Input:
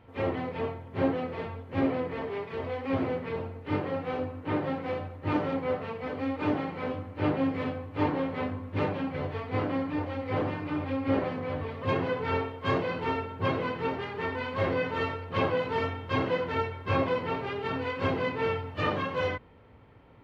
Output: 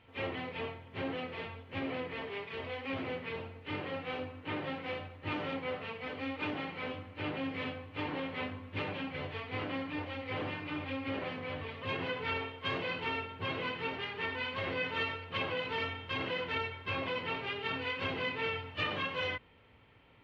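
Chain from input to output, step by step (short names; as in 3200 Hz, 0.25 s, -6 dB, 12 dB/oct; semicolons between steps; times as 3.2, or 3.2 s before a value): limiter -21 dBFS, peak gain reduction 5.5 dB; bell 2900 Hz +13.5 dB 1.5 oct; gain -8.5 dB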